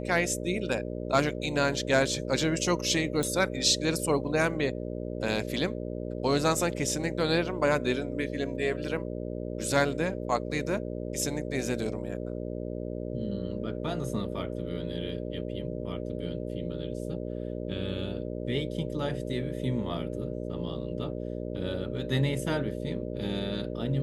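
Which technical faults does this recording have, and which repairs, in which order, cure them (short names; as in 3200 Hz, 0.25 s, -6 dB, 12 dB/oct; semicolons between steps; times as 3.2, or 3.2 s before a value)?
buzz 60 Hz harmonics 10 -35 dBFS
3.23 pop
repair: de-click; de-hum 60 Hz, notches 10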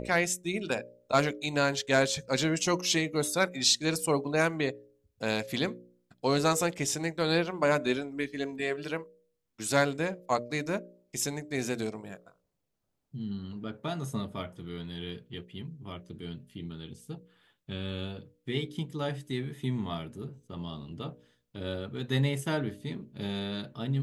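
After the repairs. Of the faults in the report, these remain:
none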